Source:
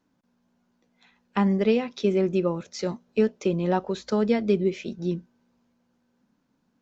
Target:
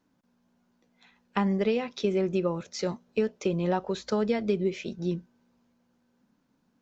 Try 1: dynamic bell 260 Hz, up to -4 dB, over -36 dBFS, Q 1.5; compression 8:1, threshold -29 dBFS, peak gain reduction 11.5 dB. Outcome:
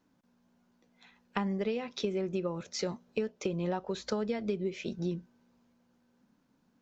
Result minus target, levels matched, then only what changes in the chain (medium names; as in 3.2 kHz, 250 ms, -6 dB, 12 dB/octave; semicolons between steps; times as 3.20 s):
compression: peak gain reduction +7 dB
change: compression 8:1, threshold -21 dBFS, peak gain reduction 4.5 dB